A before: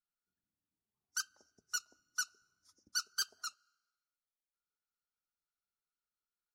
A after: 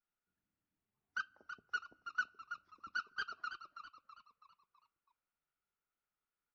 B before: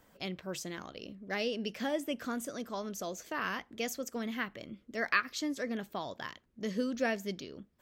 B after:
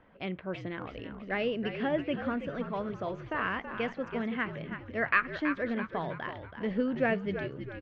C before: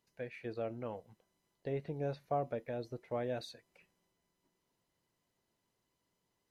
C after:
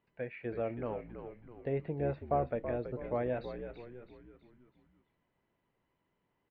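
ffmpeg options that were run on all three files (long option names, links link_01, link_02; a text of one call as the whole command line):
ffmpeg -i in.wav -filter_complex "[0:a]lowpass=frequency=2700:width=0.5412,lowpass=frequency=2700:width=1.3066,asplit=6[link_01][link_02][link_03][link_04][link_05][link_06];[link_02]adelay=327,afreqshift=-64,volume=-9dB[link_07];[link_03]adelay=654,afreqshift=-128,volume=-15.7dB[link_08];[link_04]adelay=981,afreqshift=-192,volume=-22.5dB[link_09];[link_05]adelay=1308,afreqshift=-256,volume=-29.2dB[link_10];[link_06]adelay=1635,afreqshift=-320,volume=-36dB[link_11];[link_01][link_07][link_08][link_09][link_10][link_11]amix=inputs=6:normalize=0,volume=3.5dB" out.wav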